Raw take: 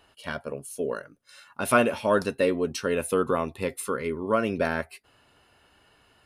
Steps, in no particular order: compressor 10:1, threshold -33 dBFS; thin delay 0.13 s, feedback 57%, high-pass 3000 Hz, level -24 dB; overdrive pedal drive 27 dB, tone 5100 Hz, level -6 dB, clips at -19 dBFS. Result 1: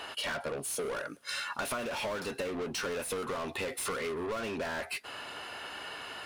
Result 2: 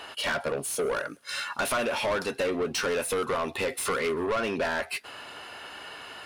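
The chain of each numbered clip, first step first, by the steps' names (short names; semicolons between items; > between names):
overdrive pedal > compressor > thin delay; compressor > overdrive pedal > thin delay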